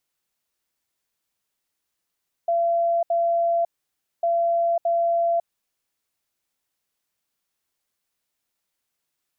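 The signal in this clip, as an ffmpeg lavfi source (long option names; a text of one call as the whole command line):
ffmpeg -f lavfi -i "aevalsrc='0.126*sin(2*PI*680*t)*clip(min(mod(mod(t,1.75),0.62),0.55-mod(mod(t,1.75),0.62))/0.005,0,1)*lt(mod(t,1.75),1.24)':duration=3.5:sample_rate=44100" out.wav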